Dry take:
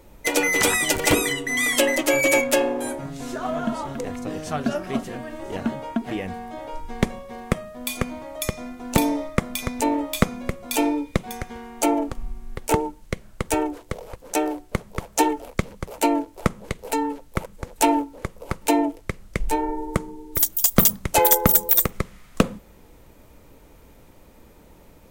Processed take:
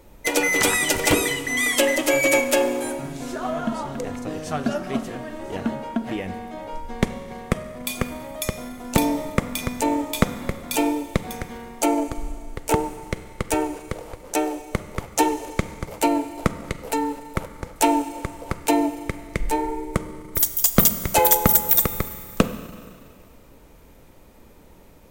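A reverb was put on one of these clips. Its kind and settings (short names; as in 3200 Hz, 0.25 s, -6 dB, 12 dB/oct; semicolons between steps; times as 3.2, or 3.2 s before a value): Schroeder reverb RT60 2.2 s, combs from 32 ms, DRR 11.5 dB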